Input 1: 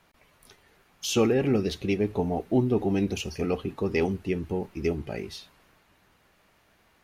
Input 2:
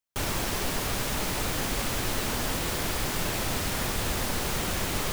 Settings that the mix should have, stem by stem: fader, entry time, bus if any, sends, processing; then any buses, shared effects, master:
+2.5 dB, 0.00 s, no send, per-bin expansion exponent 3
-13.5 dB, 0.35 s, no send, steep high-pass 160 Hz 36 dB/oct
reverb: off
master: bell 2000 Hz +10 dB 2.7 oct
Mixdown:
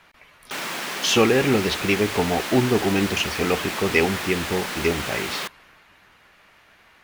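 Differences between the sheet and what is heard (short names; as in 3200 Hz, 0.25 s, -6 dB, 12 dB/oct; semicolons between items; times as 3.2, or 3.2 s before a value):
stem 1: missing per-bin expansion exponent 3; stem 2 -13.5 dB -> -4.5 dB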